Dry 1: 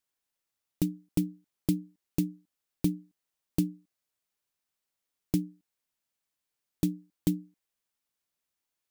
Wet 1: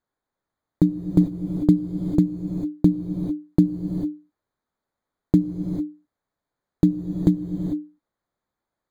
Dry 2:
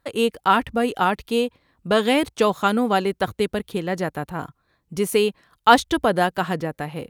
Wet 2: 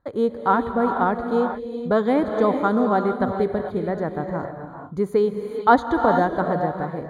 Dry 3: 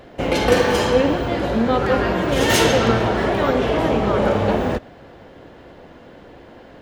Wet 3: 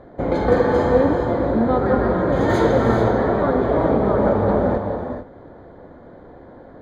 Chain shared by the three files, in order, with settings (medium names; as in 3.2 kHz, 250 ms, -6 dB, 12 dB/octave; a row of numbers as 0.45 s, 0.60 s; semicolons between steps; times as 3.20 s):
boxcar filter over 16 samples; gated-style reverb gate 470 ms rising, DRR 5 dB; peak normalisation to -3 dBFS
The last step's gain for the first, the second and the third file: +11.0 dB, +0.5 dB, 0.0 dB